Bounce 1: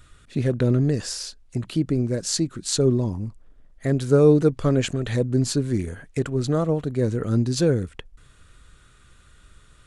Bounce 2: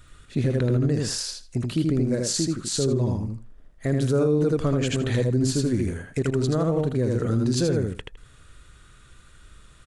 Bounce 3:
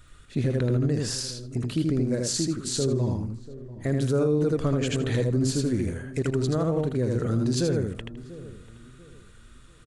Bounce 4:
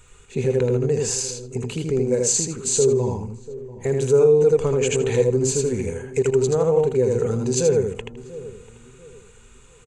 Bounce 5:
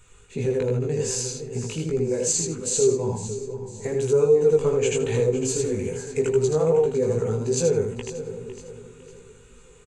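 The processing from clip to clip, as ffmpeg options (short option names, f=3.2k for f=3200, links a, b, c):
-filter_complex "[0:a]asplit=2[a][b];[b]aecho=0:1:80|160|240:0.708|0.113|0.0181[c];[a][c]amix=inputs=2:normalize=0,alimiter=limit=-14dB:level=0:latency=1:release=71"
-filter_complex "[0:a]asplit=2[a][b];[b]adelay=690,lowpass=f=930:p=1,volume=-16dB,asplit=2[c][d];[d]adelay=690,lowpass=f=930:p=1,volume=0.34,asplit=2[e][f];[f]adelay=690,lowpass=f=930:p=1,volume=0.34[g];[a][c][e][g]amix=inputs=4:normalize=0,volume=-2dB"
-af "superequalizer=6b=0.501:7b=3.55:9b=2.82:12b=2.24:15b=3.55"
-af "aecho=1:1:505|1010|1515|2020:0.224|0.0873|0.0341|0.0133,flanger=delay=17:depth=2.6:speed=2.5"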